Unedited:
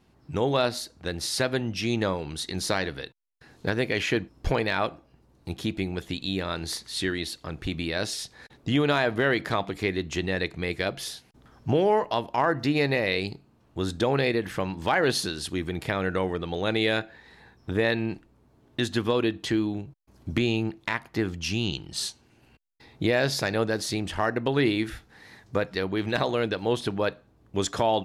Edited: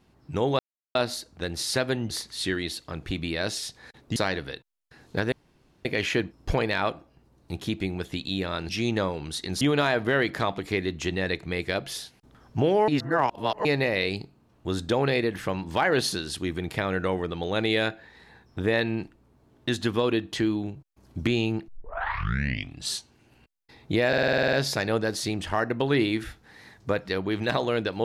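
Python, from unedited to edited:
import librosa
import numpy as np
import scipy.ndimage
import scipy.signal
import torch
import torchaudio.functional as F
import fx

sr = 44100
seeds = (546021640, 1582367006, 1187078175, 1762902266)

y = fx.edit(x, sr, fx.insert_silence(at_s=0.59, length_s=0.36),
    fx.swap(start_s=1.74, length_s=0.92, other_s=6.66, other_length_s=2.06),
    fx.insert_room_tone(at_s=3.82, length_s=0.53),
    fx.reverse_span(start_s=11.99, length_s=0.77),
    fx.tape_start(start_s=20.79, length_s=1.22),
    fx.stutter(start_s=23.19, slice_s=0.05, count=10), tone=tone)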